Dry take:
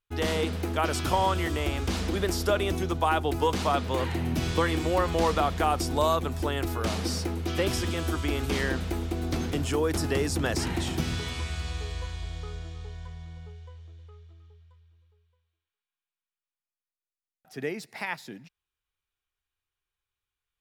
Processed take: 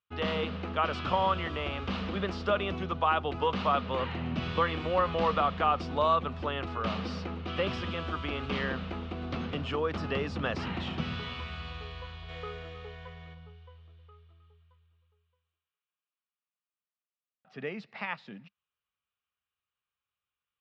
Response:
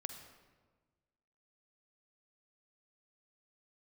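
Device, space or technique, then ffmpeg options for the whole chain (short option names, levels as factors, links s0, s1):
guitar cabinet: -filter_complex "[0:a]highpass=81,equalizer=f=200:t=q:w=4:g=7,equalizer=f=330:t=q:w=4:g=-7,equalizer=f=550:t=q:w=4:g=4,equalizer=f=1200:t=q:w=4:g=9,equalizer=f=2800:t=q:w=4:g=6,lowpass=f=4000:w=0.5412,lowpass=f=4000:w=1.3066,asplit=3[s0][s1][s2];[s0]afade=t=out:st=12.28:d=0.02[s3];[s1]equalizer=f=500:t=o:w=1:g=11,equalizer=f=2000:t=o:w=1:g=9,equalizer=f=8000:t=o:w=1:g=10,afade=t=in:st=12.28:d=0.02,afade=t=out:st=13.33:d=0.02[s4];[s2]afade=t=in:st=13.33:d=0.02[s5];[s3][s4][s5]amix=inputs=3:normalize=0,volume=0.562"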